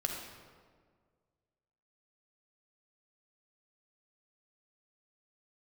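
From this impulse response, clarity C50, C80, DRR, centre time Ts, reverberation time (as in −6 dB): 2.5 dB, 4.5 dB, 1.0 dB, 56 ms, 1.8 s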